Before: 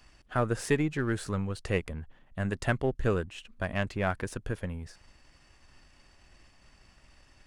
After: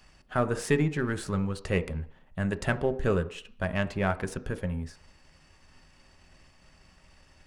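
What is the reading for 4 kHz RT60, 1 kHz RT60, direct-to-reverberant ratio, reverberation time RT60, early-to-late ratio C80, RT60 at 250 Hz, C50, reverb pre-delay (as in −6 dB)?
0.60 s, 0.55 s, 9.0 dB, 0.55 s, 19.0 dB, 0.50 s, 16.0 dB, 3 ms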